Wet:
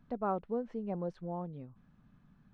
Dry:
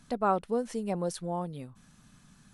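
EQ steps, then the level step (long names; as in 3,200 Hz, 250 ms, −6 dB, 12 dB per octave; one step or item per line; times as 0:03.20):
head-to-tape spacing loss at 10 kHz 45 dB
−3.5 dB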